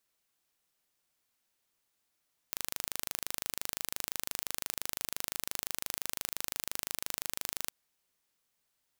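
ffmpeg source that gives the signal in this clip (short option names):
-f lavfi -i "aevalsrc='0.447*eq(mod(n,1709),0)':d=5.18:s=44100"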